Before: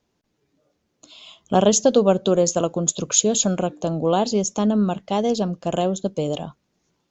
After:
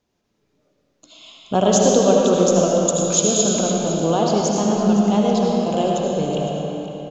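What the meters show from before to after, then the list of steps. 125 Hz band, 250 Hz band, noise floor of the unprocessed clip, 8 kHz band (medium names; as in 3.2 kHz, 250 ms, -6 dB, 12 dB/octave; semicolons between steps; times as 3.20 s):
+3.0 dB, +3.5 dB, -73 dBFS, no reading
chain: on a send: delay 510 ms -13 dB; on the sum: algorithmic reverb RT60 3.2 s, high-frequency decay 0.75×, pre-delay 40 ms, DRR -2.5 dB; trim -1.5 dB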